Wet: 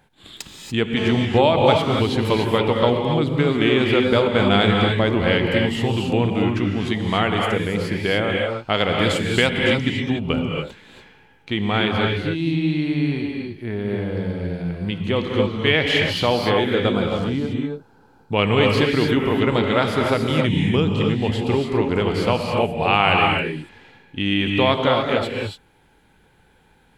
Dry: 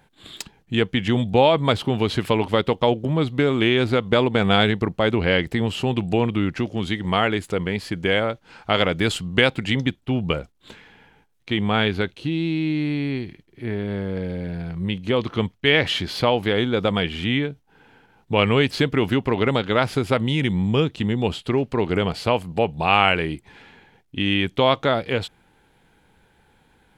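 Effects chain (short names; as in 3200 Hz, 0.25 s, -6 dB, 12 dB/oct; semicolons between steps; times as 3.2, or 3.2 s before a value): 16.96–18.32 band shelf 2400 Hz -13.5 dB 1.2 oct; non-linear reverb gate 0.31 s rising, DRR 0.5 dB; 0.97–1.95 GSM buzz -34 dBFS; gain -1 dB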